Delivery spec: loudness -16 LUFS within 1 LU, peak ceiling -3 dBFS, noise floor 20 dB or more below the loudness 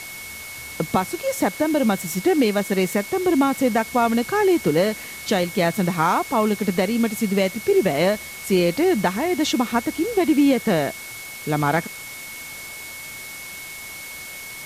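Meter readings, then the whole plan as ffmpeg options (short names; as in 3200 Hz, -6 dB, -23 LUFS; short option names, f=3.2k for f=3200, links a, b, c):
steady tone 2200 Hz; tone level -36 dBFS; noise floor -36 dBFS; noise floor target -41 dBFS; loudness -21.0 LUFS; peak -7.0 dBFS; loudness target -16.0 LUFS
-> -af "bandreject=f=2.2k:w=30"
-af "afftdn=nr=6:nf=-36"
-af "volume=5dB,alimiter=limit=-3dB:level=0:latency=1"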